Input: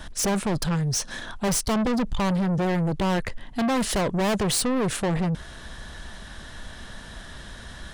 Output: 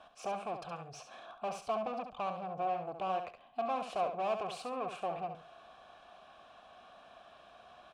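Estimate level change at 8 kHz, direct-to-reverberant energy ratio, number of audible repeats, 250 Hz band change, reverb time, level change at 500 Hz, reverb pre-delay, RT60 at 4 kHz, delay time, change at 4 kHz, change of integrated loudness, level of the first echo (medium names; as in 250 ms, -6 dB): -28.0 dB, no reverb, 2, -24.0 dB, no reverb, -9.5 dB, no reverb, no reverb, 69 ms, -19.5 dB, -13.0 dB, -8.0 dB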